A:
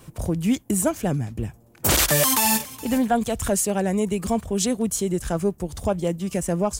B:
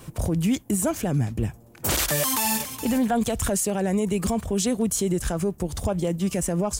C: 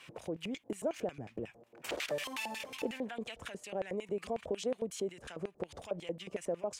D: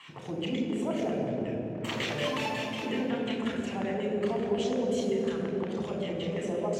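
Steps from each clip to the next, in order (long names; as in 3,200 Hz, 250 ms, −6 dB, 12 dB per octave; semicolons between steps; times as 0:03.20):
brickwall limiter −19 dBFS, peak gain reduction 9.5 dB; level +3.5 dB
downward compressor, threshold −28 dBFS, peak gain reduction 9 dB; auto-filter band-pass square 5.5 Hz 520–2,500 Hz; level +3.5 dB
convolution reverb RT60 3.5 s, pre-delay 3 ms, DRR −0.5 dB; level −4.5 dB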